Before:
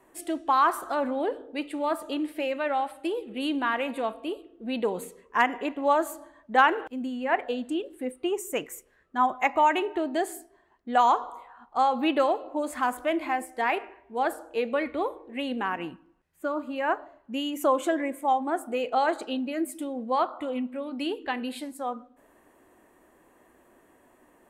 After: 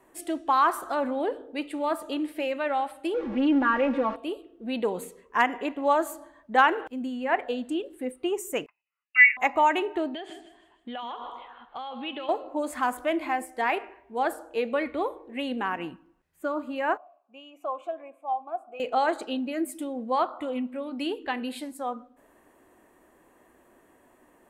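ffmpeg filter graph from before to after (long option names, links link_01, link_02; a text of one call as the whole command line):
ffmpeg -i in.wav -filter_complex "[0:a]asettb=1/sr,asplit=3[link_01][link_02][link_03];[link_01]atrim=end=3.144[link_04];[link_02]atrim=start=3.14:end=4.16,asetpts=PTS-STARTPTS,afade=type=in:duration=0.004:curve=qsin,afade=type=out:start_time=1.016:duration=0.004:curve=qsin,aeval=exprs='val(0)+0.5*0.0211*sgn(val(0))':channel_layout=same,lowpass=1800,aecho=1:1:3.6:0.87,atrim=end_sample=44982[link_05];[link_03]atrim=start=4.156[link_06];[link_04][link_05]acrossfade=duration=0.004:curve1=hsin:curve2=qsin[link_07];[link_07][link_06]acrossfade=duration=0.004:curve1=qsin:curve2=hsin,asettb=1/sr,asplit=3[link_08][link_09][link_10];[link_08]atrim=end=8.664[link_11];[link_09]atrim=start=8.66:end=9.37,asetpts=PTS-STARTPTS,afade=type=in:duration=0.004:curve=qsin,afade=type=out:start_time=0.706:duration=0.004:curve=qsin,equalizer=frequency=910:width_type=o:width=0.36:gain=15,lowpass=frequency=2600:width_type=q:width=0.5098,lowpass=frequency=2600:width_type=q:width=0.6013,lowpass=frequency=2600:width_type=q:width=0.9,lowpass=frequency=2600:width_type=q:width=2.563,afreqshift=-3000,agate=range=-28dB:threshold=-48dB:ratio=16:release=100:detection=peak[link_12];[link_10]atrim=start=9.366[link_13];[link_11][link_12]acrossfade=duration=0.004:curve1=hsin:curve2=qsin[link_14];[link_14][link_13]acrossfade=duration=0.004:curve1=qsin:curve2=hsin,asettb=1/sr,asplit=3[link_15][link_16][link_17];[link_15]atrim=end=10.144[link_18];[link_16]atrim=start=10.14:end=12.29,asetpts=PTS-STARTPTS,afade=type=in:duration=0.004:curve=qsin,afade=type=out:start_time=2.146:duration=0.004:curve=qsin,acompressor=threshold=-34dB:ratio=10:attack=3.2:release=140:knee=1:detection=peak,lowpass=frequency=3200:width_type=q:width=5.3,aecho=1:1:156|312|468|624:0.237|0.0901|0.0342|0.013,atrim=end_sample=94815[link_19];[link_17]atrim=start=12.286[link_20];[link_18][link_19]acrossfade=duration=0.004:curve1=hsin:curve2=qsin[link_21];[link_21][link_20]acrossfade=duration=0.004:curve1=qsin:curve2=hsin,asettb=1/sr,asplit=3[link_22][link_23][link_24];[link_22]atrim=end=16.974[link_25];[link_23]atrim=start=16.97:end=18.8,asetpts=PTS-STARTPTS,afade=type=in:duration=0.004:curve=qsin,afade=type=out:start_time=1.826:duration=0.004:curve=qsin,asplit=3[link_26][link_27][link_28];[link_26]bandpass=frequency=730:width_type=q:width=8,volume=0dB[link_29];[link_27]bandpass=frequency=1090:width_type=q:width=8,volume=-6dB[link_30];[link_28]bandpass=frequency=2440:width_type=q:width=8,volume=-9dB[link_31];[link_29][link_30][link_31]amix=inputs=3:normalize=0,highshelf=frequency=11000:gain=8[link_32];[link_24]atrim=start=18.796[link_33];[link_25][link_32]acrossfade=duration=0.004:curve1=hsin:curve2=qsin[link_34];[link_34][link_33]acrossfade=duration=0.004:curve1=qsin:curve2=hsin" out.wav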